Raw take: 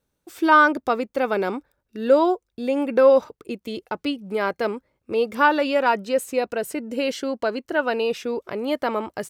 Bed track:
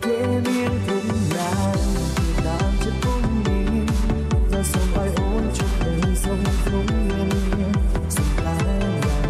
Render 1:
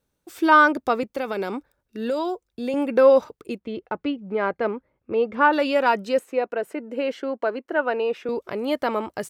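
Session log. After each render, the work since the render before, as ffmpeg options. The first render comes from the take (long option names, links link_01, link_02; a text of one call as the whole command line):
ffmpeg -i in.wav -filter_complex "[0:a]asettb=1/sr,asplit=3[link_01][link_02][link_03];[link_01]atrim=end=1.034[link_04];[link_02]atrim=start=1.03:end=2.74,asetpts=PTS-STARTPTS,afade=type=in:duration=0.004:curve=qsin,afade=type=out:start_time=1.706:duration=0.004:curve=qsin,acrossover=split=130|3000[link_05][link_06][link_07];[link_06]acompressor=threshold=-22dB:ratio=6:attack=3.2:release=140:knee=2.83:detection=peak[link_08];[link_05][link_08][link_07]amix=inputs=3:normalize=0[link_09];[link_03]atrim=start=2.736[link_10];[link_04][link_09]acrossfade=duration=0.004:curve1=hsin:curve2=qsin[link_11];[link_11][link_10]acrossfade=duration=0.004:curve1=qsin:curve2=hsin,asettb=1/sr,asplit=3[link_12][link_13][link_14];[link_12]atrim=end=3.584[link_15];[link_13]atrim=start=3.58:end=5.53,asetpts=PTS-STARTPTS,afade=type=in:duration=0.004:curve=qsin,afade=type=out:start_time=1.946:duration=0.004:curve=qsin,lowpass=2200[link_16];[link_14]atrim=start=5.526[link_17];[link_15][link_16]acrossfade=duration=0.004:curve1=hsin:curve2=qsin[link_18];[link_18][link_17]acrossfade=duration=0.004:curve1=qsin:curve2=hsin,asettb=1/sr,asplit=3[link_19][link_20][link_21];[link_19]atrim=end=6.194[link_22];[link_20]atrim=start=6.19:end=8.29,asetpts=PTS-STARTPTS,afade=type=in:duration=0.004:curve=qsin,afade=type=out:start_time=2.096:duration=0.004:curve=qsin,acrossover=split=230 2600:gain=0.1 1 0.158[link_23][link_24][link_25];[link_23][link_24][link_25]amix=inputs=3:normalize=0[link_26];[link_21]atrim=start=8.286[link_27];[link_22][link_26]acrossfade=duration=0.004:curve1=hsin:curve2=qsin[link_28];[link_28][link_27]acrossfade=duration=0.004:curve1=qsin:curve2=hsin" out.wav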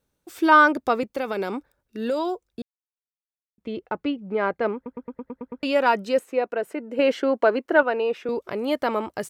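ffmpeg -i in.wav -filter_complex "[0:a]asettb=1/sr,asplit=3[link_01][link_02][link_03];[link_01]atrim=end=6.994[link_04];[link_02]atrim=start=6.99:end=7.83,asetpts=PTS-STARTPTS,afade=type=in:duration=0.004:curve=qsin,afade=type=out:start_time=0.836:duration=0.004:curve=qsin,acontrast=49[link_05];[link_03]atrim=start=7.826[link_06];[link_04][link_05]acrossfade=duration=0.004:curve1=hsin:curve2=qsin[link_07];[link_07][link_06]acrossfade=duration=0.004:curve1=qsin:curve2=hsin,asplit=11[link_08][link_09][link_10][link_11][link_12][link_13][link_14][link_15][link_16][link_17][link_18];[link_08]atrim=end=2.62,asetpts=PTS-STARTPTS,afade=type=out:start_time=2.616:duration=0.004:curve=hsin[link_19];[link_09]atrim=start=2.62:end=3.58,asetpts=PTS-STARTPTS,volume=0[link_20];[link_10]atrim=start=3.58:end=4.862,asetpts=PTS-STARTPTS,afade=type=in:duration=0.004:curve=hsin[link_21];[link_11]atrim=start=4.748:end=4.862[link_22];[link_12]atrim=start=4.748:end=4.862[link_23];[link_13]atrim=start=4.748:end=4.862[link_24];[link_14]atrim=start=4.748:end=4.862[link_25];[link_15]atrim=start=4.748:end=4.862[link_26];[link_16]atrim=start=4.748:end=4.862[link_27];[link_17]atrim=start=4.748:end=4.862[link_28];[link_18]atrim=start=5.628[link_29];[link_19][link_20][link_21]concat=n=3:v=0:a=1[link_30];[link_30][link_22]acrossfade=duration=0.004:curve1=hsin:curve2=hsin[link_31];[link_31][link_23]acrossfade=duration=0.004:curve1=hsin:curve2=hsin[link_32];[link_32][link_24]acrossfade=duration=0.004:curve1=hsin:curve2=hsin[link_33];[link_33][link_25]acrossfade=duration=0.004:curve1=hsin:curve2=hsin[link_34];[link_34][link_26]acrossfade=duration=0.004:curve1=hsin:curve2=hsin[link_35];[link_35][link_27]acrossfade=duration=0.004:curve1=hsin:curve2=hsin[link_36];[link_36][link_28]acrossfade=duration=0.004:curve1=hsin:curve2=hsin[link_37];[link_37][link_29]acrossfade=duration=0.004:curve1=hsin:curve2=hsin" out.wav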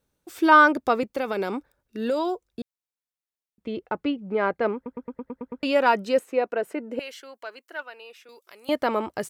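ffmpeg -i in.wav -filter_complex "[0:a]asettb=1/sr,asplit=3[link_01][link_02][link_03];[link_01]atrim=end=6.994[link_04];[link_02]atrim=start=6.99:end=8.69,asetpts=PTS-STARTPTS,afade=type=in:duration=0.004:curve=qsin,afade=type=out:start_time=1.696:duration=0.004:curve=qsin,aderivative[link_05];[link_03]atrim=start=8.686[link_06];[link_04][link_05]acrossfade=duration=0.004:curve1=hsin:curve2=qsin[link_07];[link_07][link_06]acrossfade=duration=0.004:curve1=qsin:curve2=hsin" out.wav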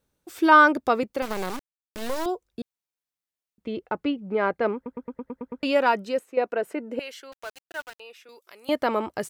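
ffmpeg -i in.wav -filter_complex "[0:a]asettb=1/sr,asplit=3[link_01][link_02][link_03];[link_01]atrim=end=1.224[link_04];[link_02]atrim=start=1.22:end=2.26,asetpts=PTS-STARTPTS,afade=type=in:duration=0.004:curve=qsin,afade=type=out:start_time=1.036:duration=0.004:curve=qsin,acrusher=bits=3:dc=4:mix=0:aa=0.000001[link_05];[link_03]atrim=start=2.256[link_06];[link_04][link_05]acrossfade=duration=0.004:curve1=hsin:curve2=qsin[link_07];[link_07][link_06]acrossfade=duration=0.004:curve1=qsin:curve2=hsin,asettb=1/sr,asplit=3[link_08][link_09][link_10];[link_08]atrim=end=7.324[link_11];[link_09]atrim=start=7.32:end=8,asetpts=PTS-STARTPTS,afade=type=in:duration=0.004:curve=qsin,afade=type=out:start_time=0.676:duration=0.004:curve=qsin,aeval=exprs='val(0)*gte(abs(val(0)),0.0106)':channel_layout=same[link_12];[link_10]atrim=start=7.996[link_13];[link_11][link_12]acrossfade=duration=0.004:curve1=hsin:curve2=qsin[link_14];[link_14][link_13]acrossfade=duration=0.004:curve1=qsin:curve2=hsin,asplit=2[link_15][link_16];[link_15]atrim=end=6.37,asetpts=PTS-STARTPTS,afade=type=out:start_time=5.73:duration=0.64:silence=0.375837[link_17];[link_16]atrim=start=6.37,asetpts=PTS-STARTPTS,afade=type=in:duration=0.004:curve=hsin:silence=0.375837[link_18];[link_17][link_18]concat=n=2:v=0:a=1" out.wav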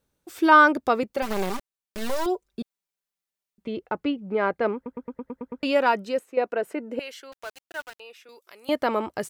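ffmpeg -i in.wav -filter_complex "[0:a]asettb=1/sr,asplit=3[link_01][link_02][link_03];[link_01]atrim=end=1.164[link_04];[link_02]atrim=start=1.16:end=3.68,asetpts=PTS-STARTPTS,afade=type=in:duration=0.004:curve=qsin,afade=type=out:start_time=2.516:duration=0.004:curve=qsin,aecho=1:1:5.1:0.65,atrim=end_sample=111132[link_05];[link_03]atrim=start=3.676[link_06];[link_04][link_05]acrossfade=duration=0.004:curve1=hsin:curve2=qsin[link_07];[link_07][link_06]acrossfade=duration=0.004:curve1=qsin:curve2=hsin" out.wav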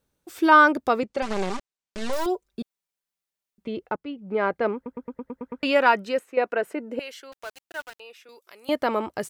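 ffmpeg -i in.wav -filter_complex "[0:a]asettb=1/sr,asplit=3[link_01][link_02][link_03];[link_01]atrim=end=1.004[link_04];[link_02]atrim=start=1:end=2.13,asetpts=PTS-STARTPTS,afade=type=in:duration=0.004:curve=qsin,afade=type=out:start_time=1.126:duration=0.004:curve=qsin,lowpass=frequency=8300:width=0.5412,lowpass=frequency=8300:width=1.3066[link_05];[link_03]atrim=start=2.126[link_06];[link_04][link_05]acrossfade=duration=0.004:curve1=hsin:curve2=qsin[link_07];[link_07][link_06]acrossfade=duration=0.004:curve1=qsin:curve2=hsin,asettb=1/sr,asplit=3[link_08][link_09][link_10];[link_08]atrim=end=5.424[link_11];[link_09]atrim=start=5.42:end=6.69,asetpts=PTS-STARTPTS,afade=type=in:duration=0.004:curve=qsin,afade=type=out:start_time=1.266:duration=0.004:curve=qsin,equalizer=frequency=1800:width=0.77:gain=5.5[link_12];[link_10]atrim=start=6.686[link_13];[link_11][link_12]acrossfade=duration=0.004:curve1=hsin:curve2=qsin[link_14];[link_14][link_13]acrossfade=duration=0.004:curve1=qsin:curve2=hsin,asplit=2[link_15][link_16];[link_15]atrim=end=3.96,asetpts=PTS-STARTPTS,afade=type=out:start_time=3.956:duration=0.004:curve=hsin:silence=0.0707946[link_17];[link_16]atrim=start=3.96,asetpts=PTS-STARTPTS,afade=type=in:duration=0.41:silence=0.0707946[link_18];[link_17][link_18]concat=n=2:v=0:a=1" out.wav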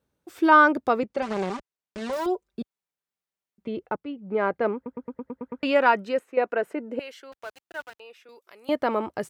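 ffmpeg -i in.wav -af "highpass=56,highshelf=frequency=3100:gain=-8" out.wav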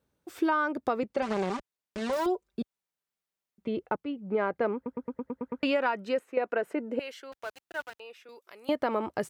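ffmpeg -i in.wav -af "acompressor=threshold=-23dB:ratio=16" out.wav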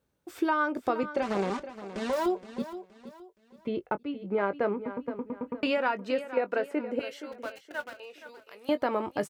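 ffmpeg -i in.wav -filter_complex "[0:a]asplit=2[link_01][link_02];[link_02]adelay=20,volume=-12dB[link_03];[link_01][link_03]amix=inputs=2:normalize=0,aecho=1:1:470|940|1410:0.224|0.0761|0.0259" out.wav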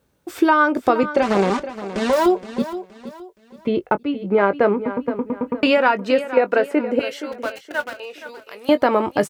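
ffmpeg -i in.wav -af "volume=11.5dB" out.wav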